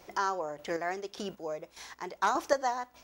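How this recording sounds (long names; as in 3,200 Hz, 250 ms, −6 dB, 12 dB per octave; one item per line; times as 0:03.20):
chopped level 1.7 Hz, depth 60%, duty 30%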